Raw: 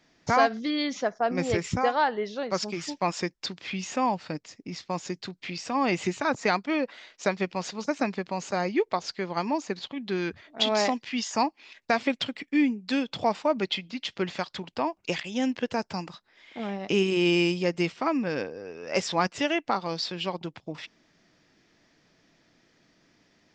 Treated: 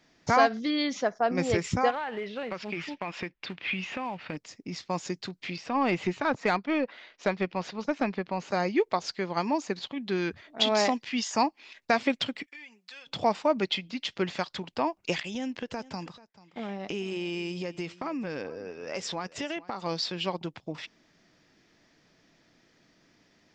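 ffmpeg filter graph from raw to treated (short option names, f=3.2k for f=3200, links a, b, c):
-filter_complex "[0:a]asettb=1/sr,asplit=3[a][b][c];[a]atrim=end=1.904[d];[b]atrim=start=1.9:end=4.37,asetpts=PTS-STARTPTS,afade=t=in:d=0.004:c=qsin,afade=t=out:st=2.466:d=0.004:c=qsin,acompressor=threshold=-30dB:ratio=12:attack=3.2:release=140:knee=1:detection=peak,acrusher=bits=4:mode=log:mix=0:aa=0.000001,lowpass=f=2.6k:t=q:w=2.2[e];[c]atrim=start=4.366[f];[d][e]acrossfade=d=0.004:c1=hsin:c2=qsin[g];[g][f]acrossfade=d=0.004:c1=qsin:c2=hsin,asettb=1/sr,asplit=3[h][i][j];[h]atrim=end=5.564[k];[i]atrim=start=5.56:end=8.51,asetpts=PTS-STARTPTS,afade=t=in:d=0.004:c=qsin,afade=t=out:st=2.946:d=0.004:c=qsin,lowpass=3.7k,aeval=exprs='(tanh(5.62*val(0)+0.2)-tanh(0.2))/5.62':c=same[l];[j]atrim=start=8.506[m];[k][l]acrossfade=d=0.004:c1=hsin:c2=qsin[n];[n][m]acrossfade=d=0.004:c1=qsin:c2=hsin,asettb=1/sr,asplit=3[o][p][q];[o]atrim=end=12.464[r];[p]atrim=start=12.46:end=13.07,asetpts=PTS-STARTPTS,afade=t=in:d=0.004:c=qsin,afade=t=out:st=0.606:d=0.004:c=qsin,highpass=1.1k,aecho=1:1:5.6:0.48,atrim=end_sample=26901,acompressor=threshold=-44dB:ratio=5:attack=3.2:release=140:knee=1:detection=peak[s];[q]atrim=start=13.066[t];[r][s]acrossfade=d=0.004:c1=hsin:c2=qsin[u];[u][t]acrossfade=d=0.004:c1=qsin:c2=hsin,asettb=1/sr,asplit=3[v][w][x];[v]atrim=end=15.354[y];[w]atrim=start=15.35:end=19.83,asetpts=PTS-STARTPTS,afade=t=in:d=0.004:c=qsin,afade=t=out:st=4.476:d=0.004:c=qsin,agate=range=-33dB:threshold=-41dB:ratio=3:release=100:detection=peak,acompressor=threshold=-31dB:ratio=4:attack=3.2:release=140:knee=1:detection=peak,aecho=1:1:437:0.106,atrim=end_sample=197568[z];[x]atrim=start=19.826[aa];[y][z]acrossfade=d=0.004:c1=hsin:c2=qsin[ab];[ab][aa]acrossfade=d=0.004:c1=qsin:c2=hsin"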